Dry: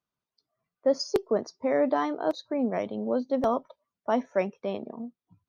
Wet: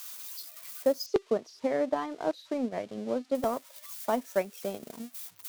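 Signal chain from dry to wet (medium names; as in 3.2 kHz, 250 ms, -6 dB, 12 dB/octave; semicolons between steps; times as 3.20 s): zero-crossing glitches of -27.5 dBFS; 1.06–3.35 s: low-pass 5 kHz 12 dB/octave; transient shaper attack +5 dB, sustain -7 dB; trim -5.5 dB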